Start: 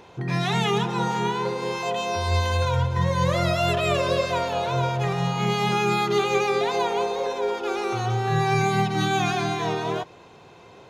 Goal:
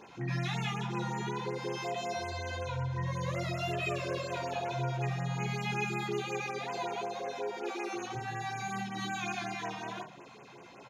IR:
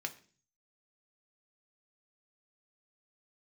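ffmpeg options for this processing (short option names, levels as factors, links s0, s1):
-filter_complex "[0:a]asettb=1/sr,asplit=3[s0][s1][s2];[s0]atrim=end=2.294[s3];[s1]atrim=start=2.29:end=3.06,asetpts=PTS-STARTPTS,afade=t=in:d=0.004:c=qsin,afade=t=out:st=0.766:d=0.004:c=qsin,highshelf=f=10000:g=-11.5[s4];[s2]atrim=start=3.056[s5];[s3][s4]acrossfade=d=0.004:c1=hsin:c2=qsin[s6];[s6][s5]acrossfade=d=0.004:c1=qsin:c2=hsin,asettb=1/sr,asplit=3[s7][s8][s9];[s7]atrim=end=7.624[s10];[s8]atrim=start=7.62:end=8.15,asetpts=PTS-STARTPTS,afade=t=in:d=0.004:c=qsin,afade=t=out:st=0.526:d=0.004:c=qsin,highpass=f=180:w=0.5412,highpass=f=180:w=1.3066[s11];[s9]atrim=start=8.146[s12];[s10][s11]acrossfade=d=0.004:c1=hsin:c2=qsin[s13];[s13][s12]acrossfade=d=0.004:c1=qsin:c2=hsin,acompressor=threshold=0.0224:ratio=2.5,asettb=1/sr,asplit=3[s14][s15][s16];[s14]atrim=end=3.914[s17];[s15]atrim=start=3.91:end=4.42,asetpts=PTS-STARTPTS,afade=t=in:d=0.004:c=qsin,afade=t=out:st=0.506:d=0.004:c=qsin,asoftclip=type=hard:threshold=0.0596[s18];[s16]atrim=start=4.416[s19];[s17][s18]acrossfade=d=0.004:c1=hsin:c2=qsin[s20];[s20][s19]acrossfade=d=0.004:c1=qsin:c2=hsin,aecho=1:1:14|76:0.531|0.15[s21];[1:a]atrim=start_sample=2205[s22];[s21][s22]afir=irnorm=-1:irlink=0,afftfilt=real='re*(1-between(b*sr/1024,320*pow(4500/320,0.5+0.5*sin(2*PI*5.4*pts/sr))/1.41,320*pow(4500/320,0.5+0.5*sin(2*PI*5.4*pts/sr))*1.41))':imag='im*(1-between(b*sr/1024,320*pow(4500/320,0.5+0.5*sin(2*PI*5.4*pts/sr))/1.41,320*pow(4500/320,0.5+0.5*sin(2*PI*5.4*pts/sr))*1.41))':win_size=1024:overlap=0.75,volume=0.75"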